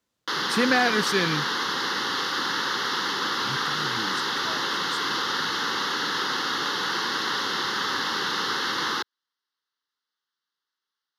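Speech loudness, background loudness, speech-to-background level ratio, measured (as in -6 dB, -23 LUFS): -26.5 LUFS, -25.5 LUFS, -1.0 dB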